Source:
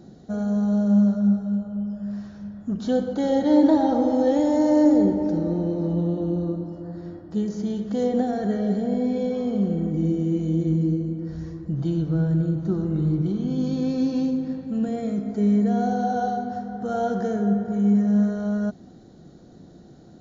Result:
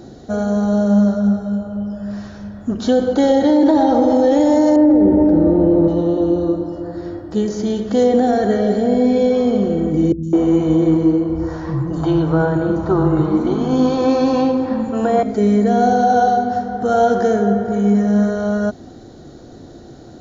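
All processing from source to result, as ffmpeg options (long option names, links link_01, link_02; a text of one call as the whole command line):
ffmpeg -i in.wav -filter_complex "[0:a]asettb=1/sr,asplit=3[link_01][link_02][link_03];[link_01]atrim=end=4.764[link_04];[link_02]atrim=start=4.76:end=5.88,asetpts=PTS-STARTPTS,afade=type=in:duration=0.004:curve=qsin,afade=type=out:start_time=1.116:duration=0.004:curve=qsin,lowpass=2100,lowshelf=frequency=350:gain=8[link_05];[link_03]atrim=start=5.876[link_06];[link_04][link_05]acrossfade=duration=0.004:curve1=hsin:curve2=qsin[link_07];[link_07][link_06]acrossfade=duration=0.004:curve1=qsin:curve2=hsin,asettb=1/sr,asplit=3[link_08][link_09][link_10];[link_08]atrim=end=10.124[link_11];[link_09]atrim=start=10.12:end=15.23,asetpts=PTS-STARTPTS,afade=type=in:duration=0.004:curve=qsin,afade=type=out:start_time=5.106:duration=0.004:curve=qsin,equalizer=frequency=970:width_type=o:width=1.2:gain=14.5,acrossover=split=220|5200[link_12][link_13][link_14];[link_14]adelay=110[link_15];[link_13]adelay=210[link_16];[link_12][link_16][link_15]amix=inputs=3:normalize=0,atrim=end_sample=225351[link_17];[link_10]atrim=start=15.226[link_18];[link_11][link_17]acrossfade=duration=0.004:curve1=hsin:curve2=qsin[link_19];[link_19][link_18]acrossfade=duration=0.004:curve1=qsin:curve2=hsin,equalizer=frequency=180:width_type=o:width=0.43:gain=-14,alimiter=level_in=16.5dB:limit=-1dB:release=50:level=0:latency=1,volume=-4.5dB" out.wav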